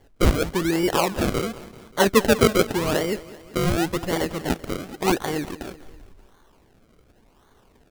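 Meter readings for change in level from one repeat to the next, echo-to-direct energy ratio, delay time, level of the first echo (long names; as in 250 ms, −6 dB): −4.5 dB, −16.5 dB, 194 ms, −18.0 dB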